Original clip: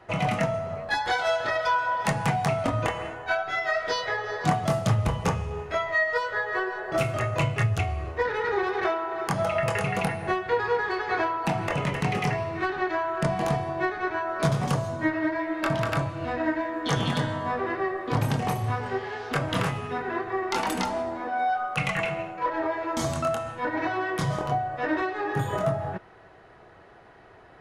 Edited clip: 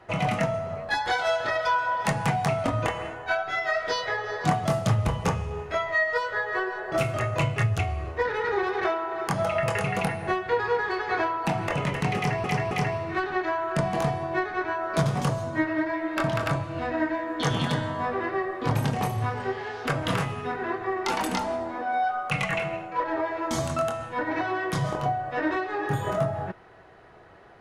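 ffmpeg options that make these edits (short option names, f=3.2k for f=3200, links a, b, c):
-filter_complex "[0:a]asplit=3[a][b][c];[a]atrim=end=12.442[d];[b]atrim=start=12.168:end=12.442[e];[c]atrim=start=12.168[f];[d][e]acrossfade=d=0.004:c1=hsin:c2=hsin[g];[g][f]acrossfade=d=0.004:c1=hsin:c2=hsin"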